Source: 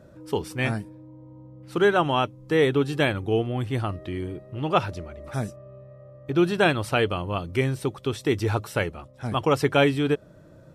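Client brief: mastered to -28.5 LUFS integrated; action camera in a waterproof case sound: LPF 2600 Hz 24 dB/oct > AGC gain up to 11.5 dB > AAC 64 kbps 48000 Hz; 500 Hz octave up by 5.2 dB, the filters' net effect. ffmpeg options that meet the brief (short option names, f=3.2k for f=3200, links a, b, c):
-af "lowpass=f=2.6k:w=0.5412,lowpass=f=2.6k:w=1.3066,equalizer=f=500:t=o:g=6.5,dynaudnorm=m=11.5dB,volume=-6.5dB" -ar 48000 -c:a aac -b:a 64k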